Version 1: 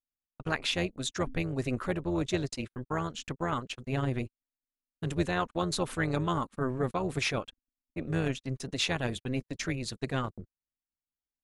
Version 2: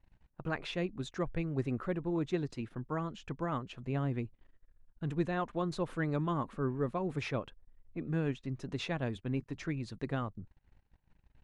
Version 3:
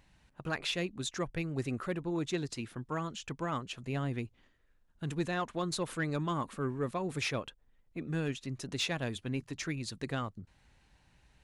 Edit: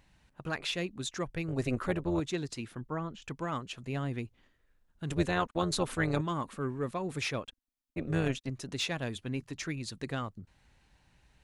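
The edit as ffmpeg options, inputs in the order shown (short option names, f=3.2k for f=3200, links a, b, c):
-filter_complex "[0:a]asplit=3[a][b][c];[2:a]asplit=5[d][e][f][g][h];[d]atrim=end=1.482[i];[a]atrim=start=1.478:end=2.202[j];[e]atrim=start=2.198:end=2.812[k];[1:a]atrim=start=2.808:end=3.222[l];[f]atrim=start=3.218:end=5.102[m];[b]atrim=start=5.098:end=6.212[n];[g]atrim=start=6.208:end=7.442[o];[c]atrim=start=7.438:end=8.502[p];[h]atrim=start=8.498[q];[i][j]acrossfade=d=0.004:c1=hsin:c2=hsin[r];[r][k]acrossfade=d=0.004:c1=hsin:c2=hsin[s];[s][l]acrossfade=d=0.004:c1=hsin:c2=hsin[t];[t][m]acrossfade=d=0.004:c1=hsin:c2=hsin[u];[u][n]acrossfade=d=0.004:c1=hsin:c2=hsin[v];[v][o]acrossfade=d=0.004:c1=hsin:c2=hsin[w];[w][p]acrossfade=d=0.004:c1=hsin:c2=hsin[x];[x][q]acrossfade=d=0.004:c1=hsin:c2=hsin"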